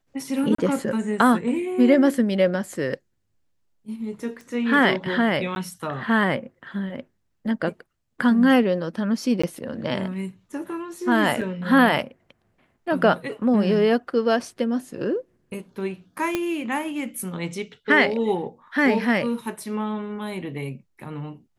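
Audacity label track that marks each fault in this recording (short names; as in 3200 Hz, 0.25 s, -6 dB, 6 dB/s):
0.550000	0.580000	gap 34 ms
4.410000	4.410000	pop -29 dBFS
5.550000	5.560000	gap
9.420000	9.440000	gap 15 ms
11.410000	11.420000	gap 5.1 ms
16.350000	16.350000	pop -10 dBFS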